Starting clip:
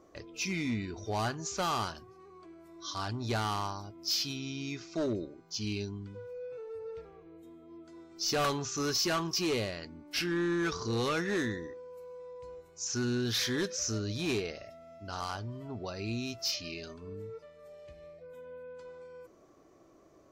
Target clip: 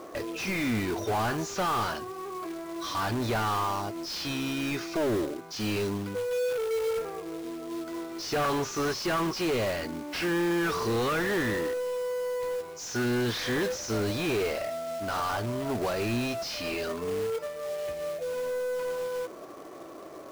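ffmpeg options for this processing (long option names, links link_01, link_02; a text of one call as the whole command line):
ffmpeg -i in.wav -filter_complex "[0:a]asplit=2[link_01][link_02];[link_02]highpass=frequency=720:poles=1,volume=27dB,asoftclip=type=tanh:threshold=-21.5dB[link_03];[link_01][link_03]amix=inputs=2:normalize=0,lowpass=frequency=1300:poles=1,volume=-6dB,acrusher=bits=3:mode=log:mix=0:aa=0.000001,volume=1.5dB" out.wav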